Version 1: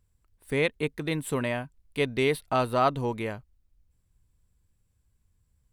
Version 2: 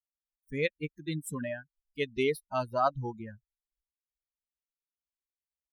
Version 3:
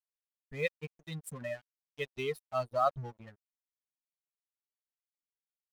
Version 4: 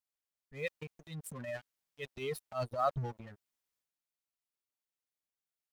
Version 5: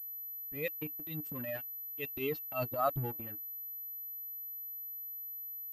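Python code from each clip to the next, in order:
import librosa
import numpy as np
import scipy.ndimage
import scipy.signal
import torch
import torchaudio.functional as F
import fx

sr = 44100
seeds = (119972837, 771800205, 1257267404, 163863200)

y1 = fx.bin_expand(x, sr, power=3.0)
y2 = y1 + 0.76 * np.pad(y1, (int(1.6 * sr / 1000.0), 0))[:len(y1)]
y2 = np.sign(y2) * np.maximum(np.abs(y2) - 10.0 ** (-46.0 / 20.0), 0.0)
y2 = y2 * librosa.db_to_amplitude(-5.0)
y3 = fx.transient(y2, sr, attack_db=-9, sustain_db=7)
y4 = fx.small_body(y3, sr, hz=(300.0, 2700.0), ring_ms=90, db=17)
y4 = fx.pwm(y4, sr, carrier_hz=12000.0)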